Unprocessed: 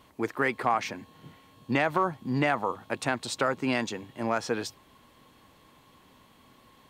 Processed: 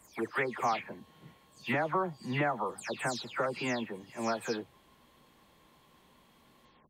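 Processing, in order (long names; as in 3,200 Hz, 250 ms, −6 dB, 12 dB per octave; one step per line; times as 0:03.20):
every frequency bin delayed by itself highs early, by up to 237 ms
level −4 dB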